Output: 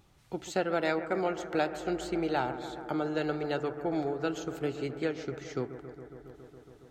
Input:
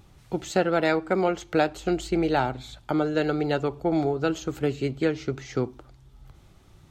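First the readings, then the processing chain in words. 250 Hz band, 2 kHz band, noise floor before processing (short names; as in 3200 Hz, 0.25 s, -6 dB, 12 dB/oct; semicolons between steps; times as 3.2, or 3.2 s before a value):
-7.0 dB, -5.5 dB, -55 dBFS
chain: low shelf 210 Hz -6 dB; on a send: analogue delay 0.138 s, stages 2048, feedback 84%, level -13.5 dB; on the sum: gain -6 dB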